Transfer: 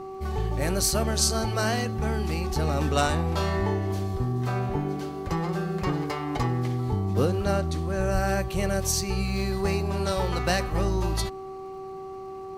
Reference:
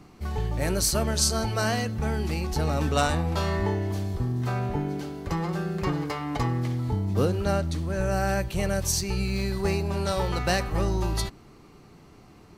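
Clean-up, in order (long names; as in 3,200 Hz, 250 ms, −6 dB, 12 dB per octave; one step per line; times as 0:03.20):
click removal
hum removal 383.1 Hz, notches 3
0:08.13–0:08.25: high-pass filter 140 Hz 24 dB per octave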